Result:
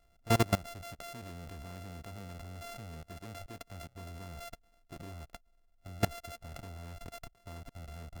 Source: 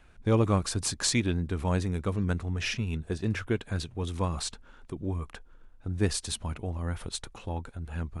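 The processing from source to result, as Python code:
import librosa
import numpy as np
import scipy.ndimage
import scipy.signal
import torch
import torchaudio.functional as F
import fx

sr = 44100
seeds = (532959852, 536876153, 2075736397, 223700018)

y = np.r_[np.sort(x[:len(x) // 64 * 64].reshape(-1, 64), axis=1).ravel(), x[len(x) // 64 * 64:]]
y = fx.level_steps(y, sr, step_db=22)
y = y * 10.0 ** (-1.0 / 20.0)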